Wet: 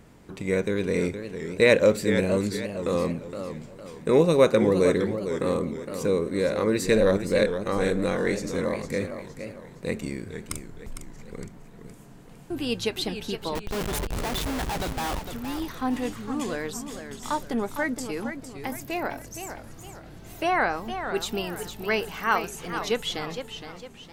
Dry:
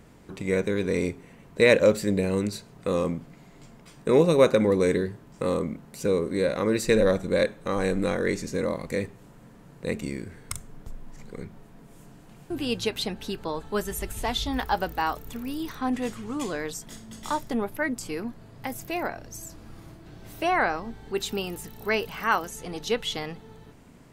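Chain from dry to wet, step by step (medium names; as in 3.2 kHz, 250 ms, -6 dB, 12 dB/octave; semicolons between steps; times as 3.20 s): 13.55–15.23 s: Schmitt trigger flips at -34.5 dBFS; modulated delay 461 ms, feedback 40%, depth 167 cents, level -9 dB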